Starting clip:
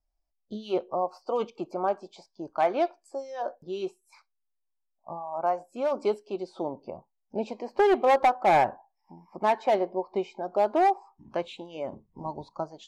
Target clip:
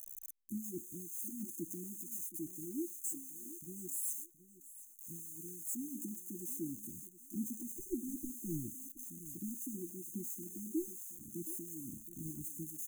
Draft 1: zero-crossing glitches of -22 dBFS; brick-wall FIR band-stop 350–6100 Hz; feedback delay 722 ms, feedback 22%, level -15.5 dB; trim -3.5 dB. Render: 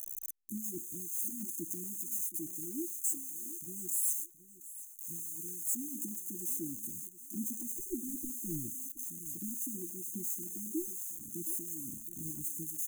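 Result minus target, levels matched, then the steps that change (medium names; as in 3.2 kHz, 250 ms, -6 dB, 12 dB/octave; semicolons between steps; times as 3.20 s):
zero-crossing glitches: distortion +7 dB
change: zero-crossing glitches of -29 dBFS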